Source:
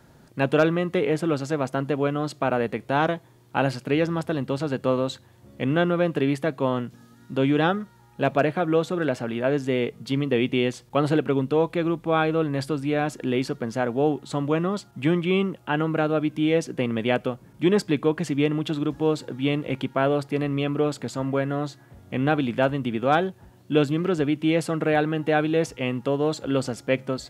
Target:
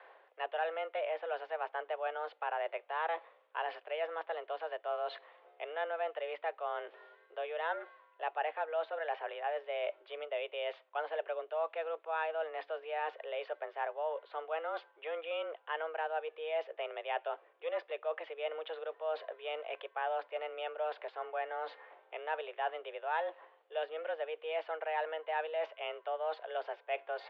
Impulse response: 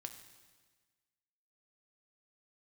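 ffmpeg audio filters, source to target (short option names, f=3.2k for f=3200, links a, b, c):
-af "areverse,acompressor=threshold=-36dB:ratio=4,areverse,highpass=f=360:t=q:w=0.5412,highpass=f=360:t=q:w=1.307,lowpass=f=3k:t=q:w=0.5176,lowpass=f=3k:t=q:w=0.7071,lowpass=f=3k:t=q:w=1.932,afreqshift=160,volume=2.5dB"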